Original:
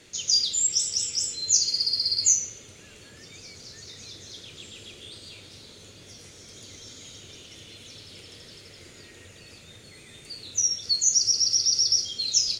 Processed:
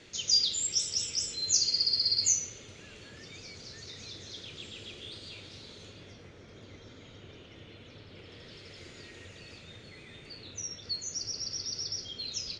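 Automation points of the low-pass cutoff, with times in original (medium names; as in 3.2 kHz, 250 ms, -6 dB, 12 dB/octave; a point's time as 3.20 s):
5.83 s 5 kHz
6.26 s 2 kHz
8.15 s 2 kHz
8.78 s 5.2 kHz
9.35 s 5.2 kHz
10.66 s 2.5 kHz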